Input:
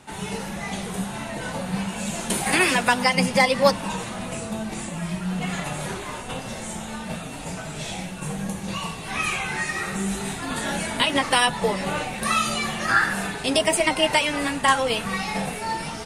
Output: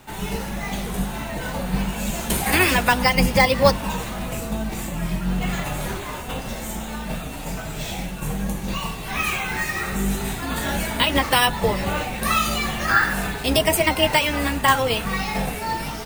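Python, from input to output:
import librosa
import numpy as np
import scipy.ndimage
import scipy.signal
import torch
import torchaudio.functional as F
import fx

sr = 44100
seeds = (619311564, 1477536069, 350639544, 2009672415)

y = fx.octave_divider(x, sr, octaves=2, level_db=0.0)
y = np.repeat(y[::2], 2)[:len(y)]
y = y * 10.0 ** (1.5 / 20.0)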